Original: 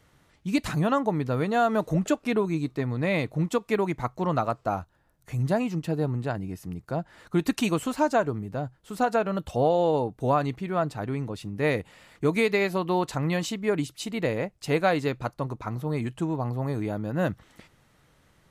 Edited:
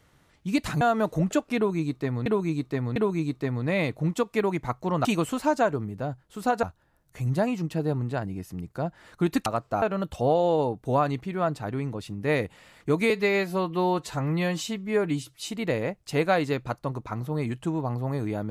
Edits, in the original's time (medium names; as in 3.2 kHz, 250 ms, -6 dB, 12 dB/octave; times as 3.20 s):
0.81–1.56 s: delete
2.31–3.01 s: loop, 3 plays
4.40–4.76 s: swap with 7.59–9.17 s
12.45–14.05 s: stretch 1.5×